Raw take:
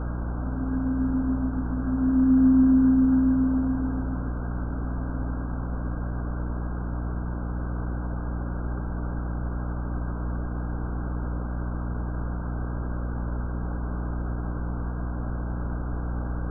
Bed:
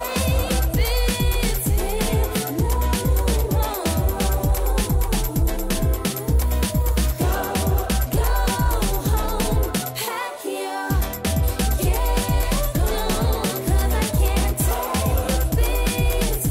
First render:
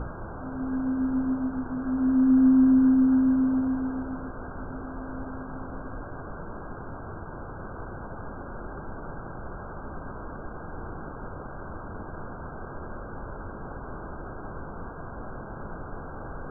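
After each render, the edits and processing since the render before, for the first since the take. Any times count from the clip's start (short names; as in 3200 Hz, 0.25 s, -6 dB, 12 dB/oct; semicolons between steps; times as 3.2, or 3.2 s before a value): notches 60/120/180/240/300 Hz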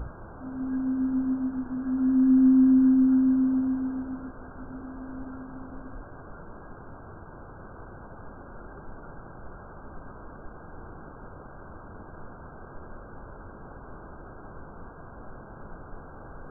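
noise print and reduce 6 dB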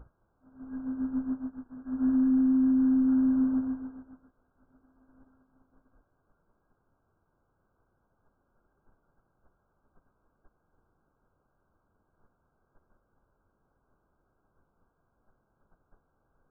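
limiter -19 dBFS, peak gain reduction 6.5 dB; upward expander 2.5:1, over -42 dBFS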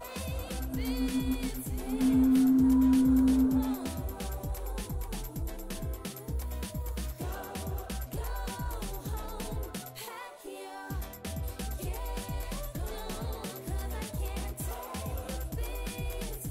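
add bed -16 dB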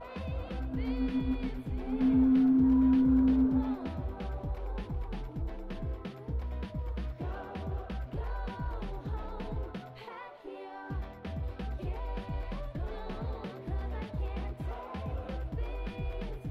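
air absorption 340 m; thinning echo 0.371 s, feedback 68%, level -16.5 dB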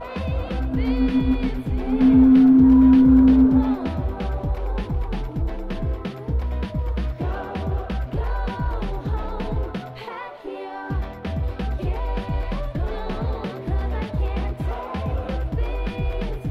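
gain +11.5 dB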